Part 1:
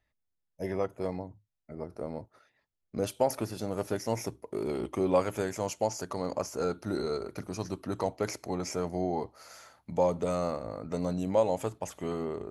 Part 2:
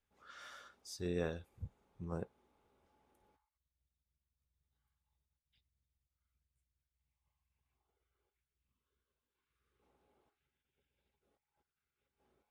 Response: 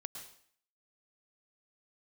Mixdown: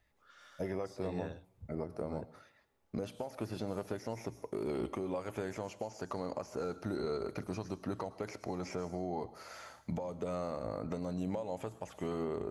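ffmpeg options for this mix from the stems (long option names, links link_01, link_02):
-filter_complex "[0:a]acompressor=threshold=-32dB:ratio=10,alimiter=level_in=6dB:limit=-24dB:level=0:latency=1:release=490,volume=-6dB,volume=2dB,asplit=2[link_01][link_02];[link_02]volume=-7.5dB[link_03];[1:a]volume=-5.5dB[link_04];[2:a]atrim=start_sample=2205[link_05];[link_03][link_05]afir=irnorm=-1:irlink=0[link_06];[link_01][link_04][link_06]amix=inputs=3:normalize=0,acrossover=split=4100[link_07][link_08];[link_08]acompressor=threshold=-59dB:ratio=4:attack=1:release=60[link_09];[link_07][link_09]amix=inputs=2:normalize=0"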